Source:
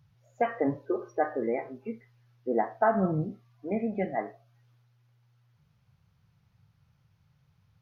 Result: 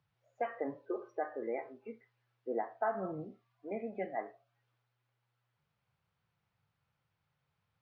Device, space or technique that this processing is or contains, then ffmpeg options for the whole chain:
DJ mixer with the lows and highs turned down: -filter_complex "[0:a]acrossover=split=290 4300:gain=0.224 1 0.2[link_01][link_02][link_03];[link_01][link_02][link_03]amix=inputs=3:normalize=0,alimiter=limit=-18dB:level=0:latency=1:release=357,volume=-6dB"

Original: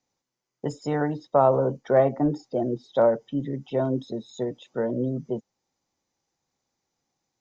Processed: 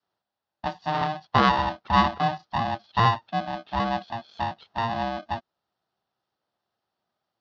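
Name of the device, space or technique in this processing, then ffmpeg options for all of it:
ring modulator pedal into a guitar cabinet: -af "adynamicequalizer=threshold=0.0158:dfrequency=230:dqfactor=0.72:tfrequency=230:tqfactor=0.72:attack=5:release=100:ratio=0.375:range=3:mode=cutabove:tftype=bell,aeval=exprs='val(0)*sgn(sin(2*PI*460*n/s))':channel_layout=same,lowpass=frequency=5700:width=0.5412,lowpass=frequency=5700:width=1.3066,highpass=99,equalizer=frequency=290:width_type=q:width=4:gain=-7,equalizer=frequency=780:width_type=q:width=4:gain=5,equalizer=frequency=2300:width_type=q:width=4:gain=-9,lowpass=frequency=4400:width=0.5412,lowpass=frequency=4400:width=1.3066"

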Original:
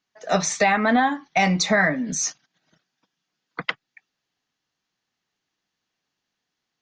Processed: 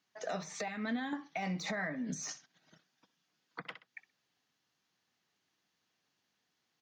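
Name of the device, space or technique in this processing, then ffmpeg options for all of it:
podcast mastering chain: -filter_complex "[0:a]asettb=1/sr,asplit=3[link_01][link_02][link_03];[link_01]atrim=end=0.684[link_04];[link_02]atrim=start=0.68:end=1.13,asetpts=PTS-STARTPTS,afade=type=in:duration=0.004:curve=qsin,afade=type=out:start_time=0.446:duration=0.004:curve=qsin,equalizer=frequency=870:width_type=o:width=2.1:gain=-14.5[link_05];[link_03]atrim=start=1.126[link_06];[link_04][link_05]acrossfade=duration=0.004:curve1=hsin:curve2=qsin[link_07];[link_07][link_06]acrossfade=duration=0.004:curve1=qsin:curve2=hsin,highpass=78,aecho=1:1:63|126:0.112|0.0202,deesser=0.75,acompressor=threshold=-37dB:ratio=2.5,alimiter=level_in=3dB:limit=-24dB:level=0:latency=1:release=265,volume=-3dB" -ar 48000 -c:a libmp3lame -b:a 96k

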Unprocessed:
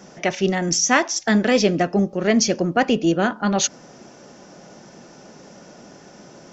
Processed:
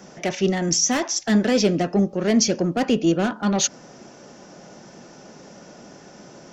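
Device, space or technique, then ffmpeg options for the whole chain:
one-band saturation: -filter_complex "[0:a]acrossover=split=470|3900[link_01][link_02][link_03];[link_02]asoftclip=type=tanh:threshold=-24dB[link_04];[link_01][link_04][link_03]amix=inputs=3:normalize=0"

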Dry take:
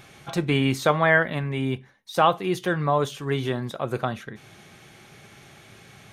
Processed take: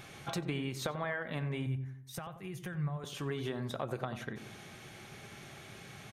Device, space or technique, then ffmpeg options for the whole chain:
serial compression, peaks first: -filter_complex "[0:a]acompressor=threshold=-27dB:ratio=6,acompressor=threshold=-35dB:ratio=2,asettb=1/sr,asplit=3[link_01][link_02][link_03];[link_01]atrim=end=1.664[link_04];[link_02]atrim=start=1.66:end=3.04,asetpts=PTS-STARTPTS,afade=type=in:duration=0.004:curve=qsin,afade=type=out:start_time=1.376:duration=0.004:curve=qsin,equalizer=frequency=125:width_type=o:width=1:gain=10,equalizer=frequency=250:width_type=o:width=1:gain=-11,equalizer=frequency=500:width_type=o:width=1:gain=-8,equalizer=frequency=1000:width_type=o:width=1:gain=-7,equalizer=frequency=4000:width_type=o:width=1:gain=-12[link_05];[link_03]atrim=start=3.036[link_06];[link_04][link_05]acrossfade=duration=0.004:curve1=hsin:curve2=qsin[link_07];[link_07][link_06]acrossfade=duration=0.004:curve1=qsin:curve2=hsin,asplit=2[link_08][link_09];[link_09]adelay=91,lowpass=frequency=980:poles=1,volume=-9dB,asplit=2[link_10][link_11];[link_11]adelay=91,lowpass=frequency=980:poles=1,volume=0.49,asplit=2[link_12][link_13];[link_13]adelay=91,lowpass=frequency=980:poles=1,volume=0.49,asplit=2[link_14][link_15];[link_15]adelay=91,lowpass=frequency=980:poles=1,volume=0.49,asplit=2[link_16][link_17];[link_17]adelay=91,lowpass=frequency=980:poles=1,volume=0.49,asplit=2[link_18][link_19];[link_19]adelay=91,lowpass=frequency=980:poles=1,volume=0.49[link_20];[link_08][link_10][link_12][link_14][link_16][link_18][link_20]amix=inputs=7:normalize=0,volume=-1.5dB"

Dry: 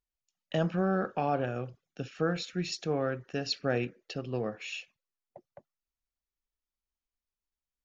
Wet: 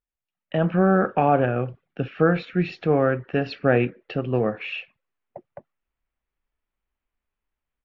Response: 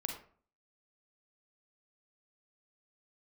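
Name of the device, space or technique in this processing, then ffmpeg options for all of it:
action camera in a waterproof case: -af "lowpass=frequency=2700:width=0.5412,lowpass=frequency=2700:width=1.3066,dynaudnorm=framelen=410:gausssize=3:maxgain=11dB" -ar 24000 -c:a aac -b:a 48k

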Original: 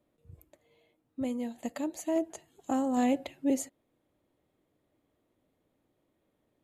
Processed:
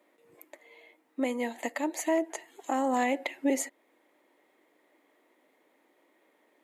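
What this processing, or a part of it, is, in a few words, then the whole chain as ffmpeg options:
laptop speaker: -af "highpass=frequency=290:width=0.5412,highpass=frequency=290:width=1.3066,equalizer=frequency=930:width_type=o:width=0.45:gain=6,equalizer=frequency=2000:width_type=o:width=0.53:gain=11.5,alimiter=level_in=2.5dB:limit=-24dB:level=0:latency=1:release=381,volume=-2.5dB,volume=8.5dB"

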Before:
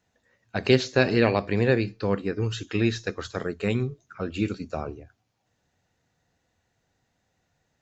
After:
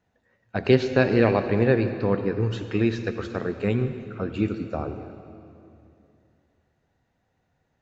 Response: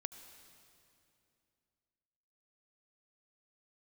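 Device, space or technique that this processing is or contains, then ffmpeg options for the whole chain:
swimming-pool hall: -filter_complex "[0:a]highshelf=frequency=3300:gain=-10[link_01];[1:a]atrim=start_sample=2205[link_02];[link_01][link_02]afir=irnorm=-1:irlink=0,highshelf=frequency=4700:gain=-5,volume=5dB"

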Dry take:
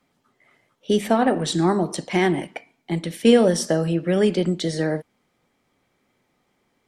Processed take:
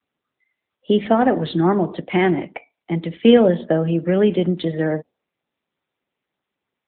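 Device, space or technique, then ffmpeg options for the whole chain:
mobile call with aggressive noise cancelling: -af "highpass=110,afftdn=noise_reduction=29:noise_floor=-44,volume=3dB" -ar 8000 -c:a libopencore_amrnb -b:a 10200

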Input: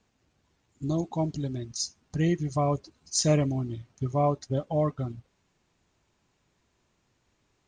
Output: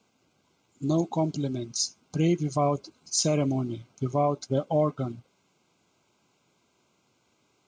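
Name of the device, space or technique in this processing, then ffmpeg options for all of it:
PA system with an anti-feedback notch: -af "highpass=160,asuperstop=centerf=1800:order=20:qfactor=5.2,alimiter=limit=-19dB:level=0:latency=1:release=95,volume=4.5dB"

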